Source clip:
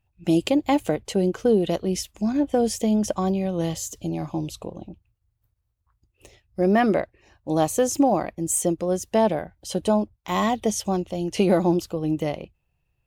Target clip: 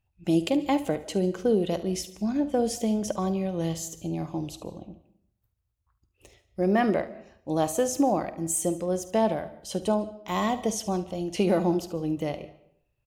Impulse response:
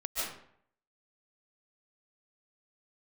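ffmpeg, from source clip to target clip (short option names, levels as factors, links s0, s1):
-filter_complex "[0:a]aecho=1:1:49|73:0.158|0.158,asplit=2[s0][s1];[1:a]atrim=start_sample=2205[s2];[s1][s2]afir=irnorm=-1:irlink=0,volume=0.0794[s3];[s0][s3]amix=inputs=2:normalize=0,volume=0.596"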